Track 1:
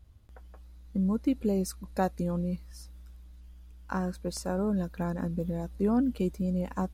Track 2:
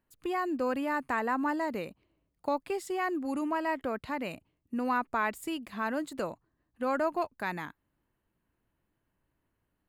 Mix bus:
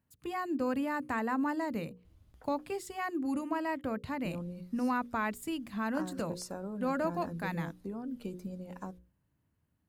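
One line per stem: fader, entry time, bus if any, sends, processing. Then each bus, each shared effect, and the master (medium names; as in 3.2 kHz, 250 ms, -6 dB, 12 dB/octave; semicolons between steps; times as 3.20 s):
-3.5 dB, 2.05 s, muted 2.89–4.25 s, no send, compression 6:1, threshold -30 dBFS, peak gain reduction 9 dB; tremolo triangle 0.99 Hz, depth 30%
-4.0 dB, 0.00 s, no send, high-pass 80 Hz; tone controls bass +13 dB, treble +3 dB; band-stop 370 Hz, Q 12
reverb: none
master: hum notches 60/120/180/240/300/360/420/480/540 Hz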